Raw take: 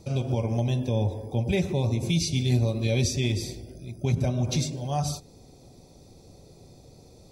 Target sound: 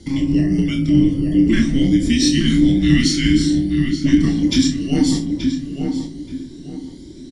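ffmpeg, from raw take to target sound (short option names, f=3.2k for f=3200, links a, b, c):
-filter_complex "[0:a]afftfilt=real='re*pow(10,7/40*sin(2*PI*(2*log(max(b,1)*sr/1024/100)/log(2)-(1.6)*(pts-256)/sr)))':imag='im*pow(10,7/40*sin(2*PI*(2*log(max(b,1)*sr/1024/100)/log(2)-(1.6)*(pts-256)/sr)))':win_size=1024:overlap=0.75,aresample=22050,aresample=44100,asplit=2[a][b];[b]adelay=879,lowpass=f=1.9k:p=1,volume=-4dB,asplit=2[c][d];[d]adelay=879,lowpass=f=1.9k:p=1,volume=0.33,asplit=2[e][f];[f]adelay=879,lowpass=f=1.9k:p=1,volume=0.33,asplit=2[g][h];[h]adelay=879,lowpass=f=1.9k:p=1,volume=0.33[i];[c][e][g][i]amix=inputs=4:normalize=0[j];[a][j]amix=inputs=2:normalize=0,aeval=exprs='0.282*(cos(1*acos(clip(val(0)/0.282,-1,1)))-cos(1*PI/2))+0.00631*(cos(5*acos(clip(val(0)/0.282,-1,1)))-cos(5*PI/2))':c=same,asplit=2[k][l];[l]aecho=0:1:27|50|64:0.596|0.188|0.237[m];[k][m]amix=inputs=2:normalize=0,afreqshift=-410,volume=7dB"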